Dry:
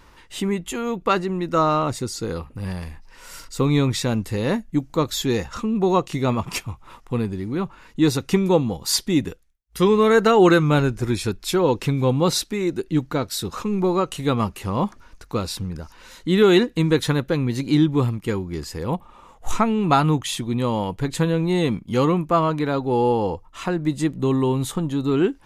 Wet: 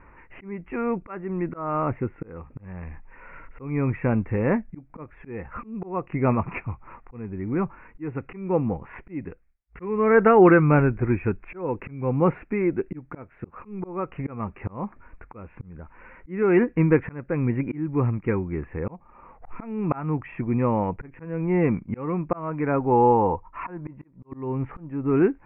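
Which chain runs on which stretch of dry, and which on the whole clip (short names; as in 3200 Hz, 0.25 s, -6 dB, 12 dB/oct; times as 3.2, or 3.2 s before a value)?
22.83–24.32 auto swell 0.348 s + bell 970 Hz +10.5 dB 0.33 oct
whole clip: steep low-pass 2500 Hz 96 dB/oct; auto swell 0.399 s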